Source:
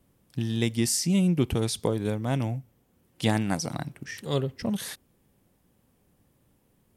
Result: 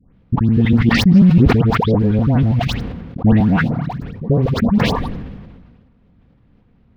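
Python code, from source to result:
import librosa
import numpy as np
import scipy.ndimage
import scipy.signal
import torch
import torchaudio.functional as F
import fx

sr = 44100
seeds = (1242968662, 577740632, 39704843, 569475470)

p1 = fx.local_reverse(x, sr, ms=81.0)
p2 = fx.bass_treble(p1, sr, bass_db=12, treble_db=2)
p3 = p2 + 0.3 * np.pad(p2, (int(4.2 * sr / 1000.0), 0))[:len(p2)]
p4 = fx.level_steps(p3, sr, step_db=24)
p5 = p3 + (p4 * 10.0 ** (-2.5 / 20.0))
p6 = fx.spec_box(p5, sr, start_s=4.06, length_s=1.01, low_hz=1200.0, high_hz=9200.0, gain_db=-27)
p7 = fx.filter_lfo_lowpass(p6, sr, shape='sine', hz=4.1, low_hz=580.0, high_hz=3700.0, q=1.4)
p8 = fx.quant_companded(p7, sr, bits=6)
p9 = fx.air_absorb(p8, sr, metres=340.0)
p10 = fx.dispersion(p9, sr, late='highs', ms=145.0, hz=1500.0)
p11 = fx.sustainer(p10, sr, db_per_s=36.0)
y = p11 * 10.0 ** (2.5 / 20.0)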